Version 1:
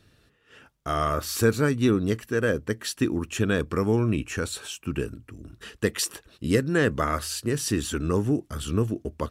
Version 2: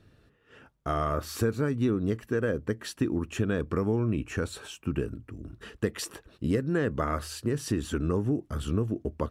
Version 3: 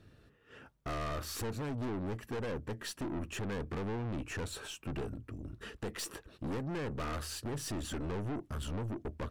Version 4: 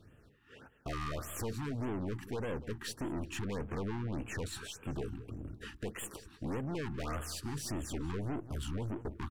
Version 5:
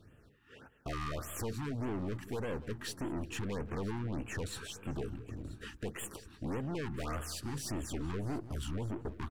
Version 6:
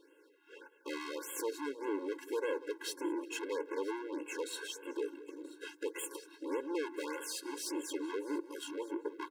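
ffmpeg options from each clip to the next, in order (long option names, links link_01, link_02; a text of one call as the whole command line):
ffmpeg -i in.wav -af "highshelf=frequency=2100:gain=-11,acompressor=threshold=-26dB:ratio=3,volume=1.5dB" out.wav
ffmpeg -i in.wav -af "aeval=exprs='(tanh(56.2*val(0)+0.3)-tanh(0.3))/56.2':channel_layout=same" out.wav
ffmpeg -i in.wav -filter_complex "[0:a]asplit=2[link_01][link_02];[link_02]adelay=192,lowpass=frequency=4100:poles=1,volume=-14.5dB,asplit=2[link_03][link_04];[link_04]adelay=192,lowpass=frequency=4100:poles=1,volume=0.35,asplit=2[link_05][link_06];[link_06]adelay=192,lowpass=frequency=4100:poles=1,volume=0.35[link_07];[link_01][link_03][link_05][link_07]amix=inputs=4:normalize=0,afftfilt=real='re*(1-between(b*sr/1024,510*pow(5000/510,0.5+0.5*sin(2*PI*1.7*pts/sr))/1.41,510*pow(5000/510,0.5+0.5*sin(2*PI*1.7*pts/sr))*1.41))':imag='im*(1-between(b*sr/1024,510*pow(5000/510,0.5+0.5*sin(2*PI*1.7*pts/sr))/1.41,510*pow(5000/510,0.5+0.5*sin(2*PI*1.7*pts/sr))*1.41))':win_size=1024:overlap=0.75" out.wav
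ffmpeg -i in.wav -af "aecho=1:1:982:0.106" out.wav
ffmpeg -i in.wav -af "afftfilt=real='re*eq(mod(floor(b*sr/1024/280),2),1)':imag='im*eq(mod(floor(b*sr/1024/280),2),1)':win_size=1024:overlap=0.75,volume=4.5dB" out.wav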